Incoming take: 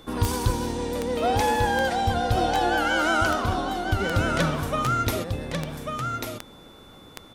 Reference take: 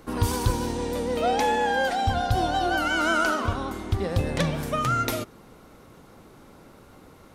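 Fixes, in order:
click removal
notch filter 3,500 Hz, Q 30
echo removal 1,143 ms −5 dB

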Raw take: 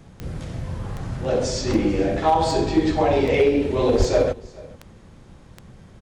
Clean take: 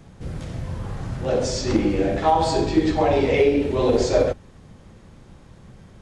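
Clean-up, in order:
clipped peaks rebuilt −9.5 dBFS
click removal
0:03.98–0:04.10: high-pass filter 140 Hz 24 dB per octave
echo removal 433 ms −22.5 dB

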